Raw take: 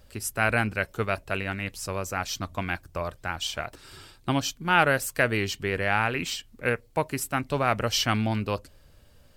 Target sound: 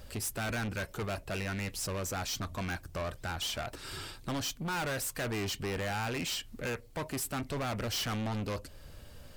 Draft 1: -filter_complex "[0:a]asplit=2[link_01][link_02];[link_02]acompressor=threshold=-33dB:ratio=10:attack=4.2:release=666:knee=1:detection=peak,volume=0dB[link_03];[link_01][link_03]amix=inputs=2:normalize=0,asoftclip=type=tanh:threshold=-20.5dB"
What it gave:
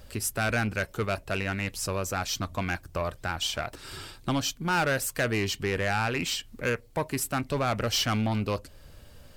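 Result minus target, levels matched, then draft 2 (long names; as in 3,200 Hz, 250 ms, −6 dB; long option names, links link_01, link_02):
soft clipping: distortion −7 dB
-filter_complex "[0:a]asplit=2[link_01][link_02];[link_02]acompressor=threshold=-33dB:ratio=10:attack=4.2:release=666:knee=1:detection=peak,volume=0dB[link_03];[link_01][link_03]amix=inputs=2:normalize=0,asoftclip=type=tanh:threshold=-32dB"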